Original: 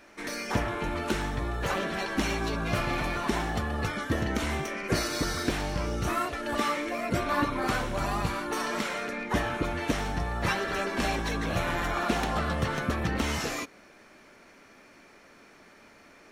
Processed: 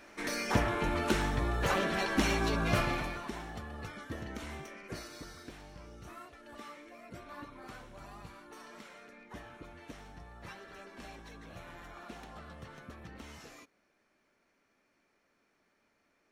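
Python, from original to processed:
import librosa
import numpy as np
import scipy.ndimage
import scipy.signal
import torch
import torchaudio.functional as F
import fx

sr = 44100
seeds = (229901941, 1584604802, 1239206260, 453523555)

y = fx.gain(x, sr, db=fx.line((2.79, -0.5), (3.32, -13.0), (4.63, -13.0), (5.47, -20.0)))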